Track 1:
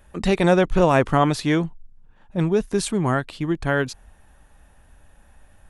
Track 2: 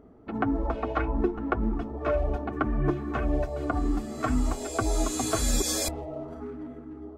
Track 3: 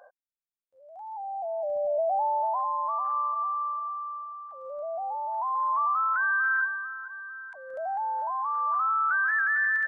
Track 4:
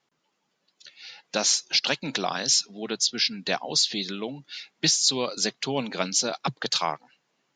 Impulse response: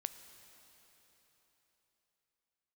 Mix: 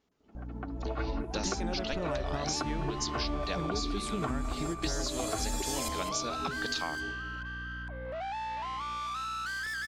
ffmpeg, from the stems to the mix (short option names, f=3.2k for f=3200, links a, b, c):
-filter_complex "[0:a]acompressor=threshold=-20dB:ratio=3,adelay=1200,volume=-11.5dB,asplit=2[a][b];[b]volume=-4dB[c];[1:a]volume=-3dB,asplit=3[d][e][f];[e]volume=-23.5dB[g];[f]volume=-12dB[h];[2:a]adynamicequalizer=threshold=0.0158:dfrequency=1300:dqfactor=1.7:tfrequency=1300:tqfactor=1.7:attack=5:release=100:ratio=0.375:range=2:mode=cutabove:tftype=bell,aeval=exprs='val(0)+0.0112*(sin(2*PI*60*n/s)+sin(2*PI*2*60*n/s)/2+sin(2*PI*3*60*n/s)/3+sin(2*PI*4*60*n/s)/4+sin(2*PI*5*60*n/s)/5)':c=same,asoftclip=type=tanh:threshold=-36.5dB,adelay=350,volume=1.5dB[i];[3:a]volume=-5.5dB,asplit=2[j][k];[k]apad=whole_len=316515[l];[d][l]sidechaingate=range=-33dB:threshold=-56dB:ratio=16:detection=peak[m];[a][j]amix=inputs=2:normalize=0,alimiter=limit=-19dB:level=0:latency=1:release=492,volume=0dB[n];[4:a]atrim=start_sample=2205[o];[c][g]amix=inputs=2:normalize=0[p];[p][o]afir=irnorm=-1:irlink=0[q];[h]aecho=0:1:206:1[r];[m][i][n][q][r]amix=inputs=5:normalize=0,acompressor=threshold=-29dB:ratio=6"